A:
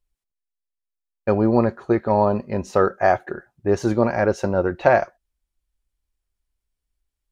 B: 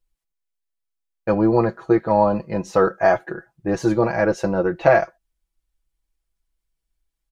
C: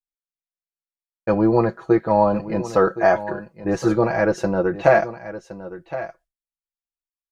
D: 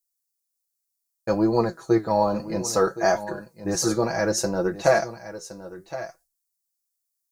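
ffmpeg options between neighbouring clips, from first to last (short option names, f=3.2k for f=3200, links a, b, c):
-af "aecho=1:1:6.1:0.78,volume=-1dB"
-af "aecho=1:1:1067:0.2,agate=range=-33dB:threshold=-47dB:ratio=3:detection=peak"
-af "aexciter=amount=9.3:drive=3.9:freq=4.3k,flanger=delay=4.1:depth=9.7:regen=74:speed=0.63:shape=triangular"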